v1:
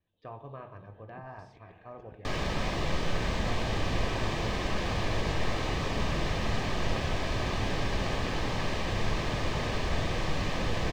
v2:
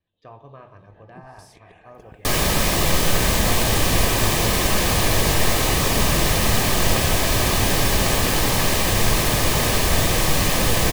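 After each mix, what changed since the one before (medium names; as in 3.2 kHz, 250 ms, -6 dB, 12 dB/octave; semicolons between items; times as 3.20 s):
first sound +7.0 dB; second sound +10.0 dB; master: remove distance through air 160 m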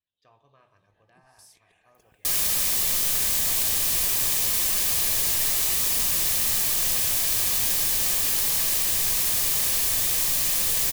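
master: add pre-emphasis filter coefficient 0.9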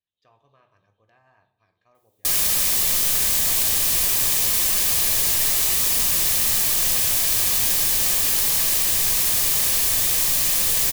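first sound: muted; second sound +3.5 dB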